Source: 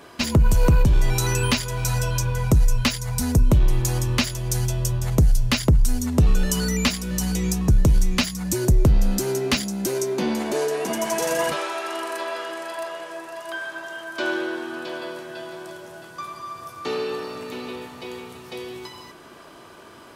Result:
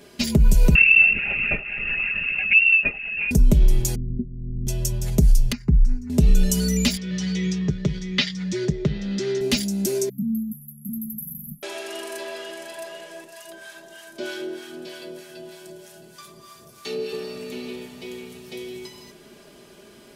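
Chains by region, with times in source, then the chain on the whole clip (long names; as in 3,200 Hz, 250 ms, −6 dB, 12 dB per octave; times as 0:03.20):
0:00.75–0:03.31: voice inversion scrambler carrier 2,700 Hz + linear-prediction vocoder at 8 kHz whisper
0:03.95–0:04.67: inverse Chebyshev low-pass filter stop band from 1,700 Hz, stop band 80 dB + amplitude modulation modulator 130 Hz, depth 45%
0:05.52–0:06.10: high-frequency loss of the air 210 metres + phaser with its sweep stopped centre 1,400 Hz, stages 4 + expander for the loud parts, over −28 dBFS
0:06.97–0:09.41: loudspeaker in its box 140–5,100 Hz, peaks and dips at 150 Hz +3 dB, 240 Hz −9 dB, 700 Hz −7 dB, 1,300 Hz +5 dB, 1,900 Hz +10 dB, 3,400 Hz +7 dB + one half of a high-frequency compander decoder only
0:10.09–0:11.63: linear-phase brick-wall band-stop 250–11,000 Hz + high-shelf EQ 12,000 Hz +8 dB
0:13.24–0:17.13: high-shelf EQ 4,400 Hz +5.5 dB + two-band tremolo in antiphase 3.2 Hz, crossover 760 Hz
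whole clip: parametric band 1,100 Hz −14.5 dB 1.2 octaves; comb filter 4.9 ms, depth 55%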